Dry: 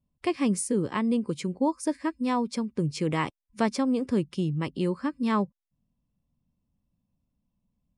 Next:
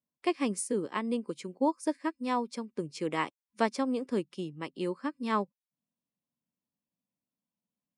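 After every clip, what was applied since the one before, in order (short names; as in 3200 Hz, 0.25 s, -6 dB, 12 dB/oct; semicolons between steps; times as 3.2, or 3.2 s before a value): HPF 280 Hz 12 dB/oct; upward expander 1.5:1, over -39 dBFS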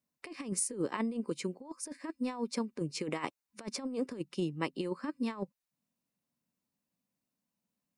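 notch 3300 Hz, Q 11; negative-ratio compressor -34 dBFS, ratio -0.5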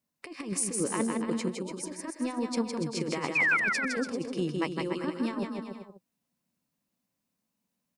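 painted sound fall, 3.35–3.57, 1300–2600 Hz -27 dBFS; bouncing-ball echo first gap 0.16 s, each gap 0.8×, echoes 5; gain +2.5 dB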